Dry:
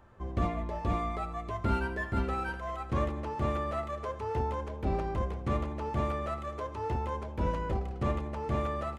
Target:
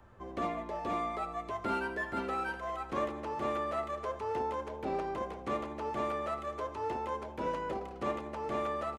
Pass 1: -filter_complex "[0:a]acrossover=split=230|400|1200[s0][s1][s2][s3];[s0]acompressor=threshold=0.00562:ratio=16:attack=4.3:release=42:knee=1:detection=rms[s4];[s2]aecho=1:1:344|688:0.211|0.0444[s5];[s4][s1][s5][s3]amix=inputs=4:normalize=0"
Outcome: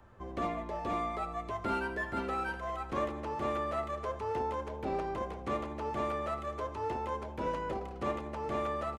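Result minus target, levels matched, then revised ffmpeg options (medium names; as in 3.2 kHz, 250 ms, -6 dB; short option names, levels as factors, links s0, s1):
compression: peak gain reduction -6 dB
-filter_complex "[0:a]acrossover=split=230|400|1200[s0][s1][s2][s3];[s0]acompressor=threshold=0.00266:ratio=16:attack=4.3:release=42:knee=1:detection=rms[s4];[s2]aecho=1:1:344|688:0.211|0.0444[s5];[s4][s1][s5][s3]amix=inputs=4:normalize=0"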